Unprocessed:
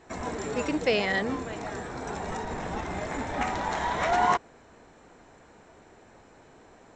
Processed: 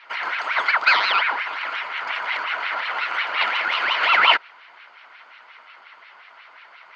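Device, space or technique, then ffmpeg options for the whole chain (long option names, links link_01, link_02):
voice changer toy: -af "aeval=exprs='val(0)*sin(2*PI*1300*n/s+1300*0.6/5.6*sin(2*PI*5.6*n/s))':channel_layout=same,highpass=590,equalizer=frequency=670:width_type=q:width=4:gain=5,equalizer=frequency=970:width_type=q:width=4:gain=9,equalizer=frequency=1400:width_type=q:width=4:gain=10,equalizer=frequency=2100:width_type=q:width=4:gain=10,equalizer=frequency=3000:width_type=q:width=4:gain=8,equalizer=frequency=4400:width_type=q:width=4:gain=9,lowpass=frequency=5000:width=0.5412,lowpass=frequency=5000:width=1.3066,volume=2.5dB"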